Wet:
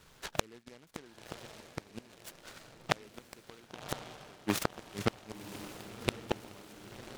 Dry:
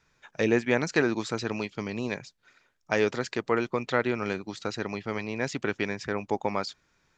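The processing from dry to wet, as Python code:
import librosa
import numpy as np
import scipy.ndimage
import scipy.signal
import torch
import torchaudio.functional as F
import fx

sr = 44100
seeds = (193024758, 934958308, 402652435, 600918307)

y = fx.gate_flip(x, sr, shuts_db=-20.0, range_db=-39)
y = fx.echo_diffused(y, sr, ms=1070, feedback_pct=52, wet_db=-11.0)
y = fx.noise_mod_delay(y, sr, seeds[0], noise_hz=1900.0, depth_ms=0.11)
y = y * 10.0 ** (8.5 / 20.0)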